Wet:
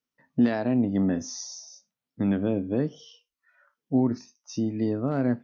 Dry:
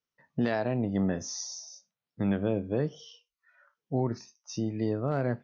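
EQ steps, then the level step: bell 260 Hz +11.5 dB 0.43 oct; 0.0 dB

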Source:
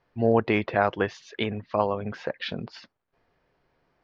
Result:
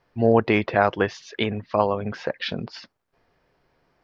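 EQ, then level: bell 5300 Hz +4 dB 0.46 oct; +3.5 dB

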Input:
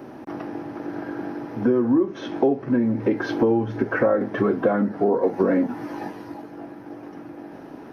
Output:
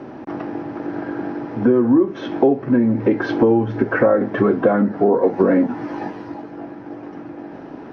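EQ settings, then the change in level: air absorption 120 m; +5.0 dB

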